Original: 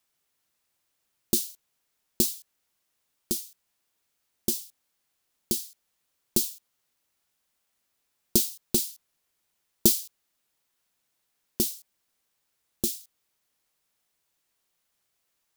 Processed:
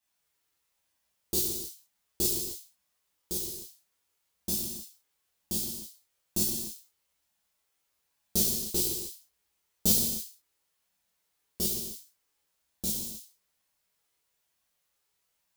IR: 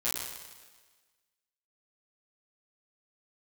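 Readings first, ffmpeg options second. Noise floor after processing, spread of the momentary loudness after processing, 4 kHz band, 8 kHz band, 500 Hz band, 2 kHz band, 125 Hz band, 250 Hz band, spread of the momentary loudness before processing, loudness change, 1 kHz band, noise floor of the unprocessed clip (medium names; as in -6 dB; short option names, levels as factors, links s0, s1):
-78 dBFS, 17 LU, -0.5 dB, -1.0 dB, -4.0 dB, -1.0 dB, -0.5 dB, -4.0 dB, 18 LU, -2.5 dB, 0.0 dB, -77 dBFS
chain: -filter_complex "[0:a]flanger=delay=1.1:depth=1.3:regen=-44:speed=1.1:shape=sinusoidal[s0];[1:a]atrim=start_sample=2205,afade=t=out:st=0.39:d=0.01,atrim=end_sample=17640[s1];[s0][s1]afir=irnorm=-1:irlink=0,volume=0.668"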